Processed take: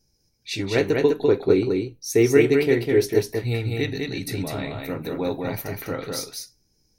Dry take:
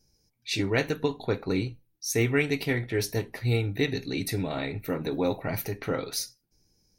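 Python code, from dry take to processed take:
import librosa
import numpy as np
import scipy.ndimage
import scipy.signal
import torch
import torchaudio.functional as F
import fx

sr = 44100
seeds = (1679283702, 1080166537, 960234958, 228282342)

y = fx.peak_eq(x, sr, hz=380.0, db=12.5, octaves=0.78, at=(0.75, 3.19))
y = y + 10.0 ** (-3.5 / 20.0) * np.pad(y, (int(201 * sr / 1000.0), 0))[:len(y)]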